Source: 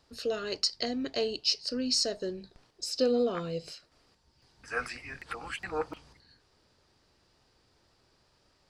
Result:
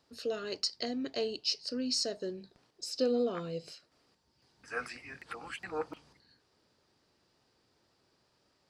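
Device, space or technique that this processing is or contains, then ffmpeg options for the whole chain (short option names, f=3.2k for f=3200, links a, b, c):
filter by subtraction: -filter_complex "[0:a]asplit=2[a][b];[b]lowpass=210,volume=-1[c];[a][c]amix=inputs=2:normalize=0,volume=-4.5dB"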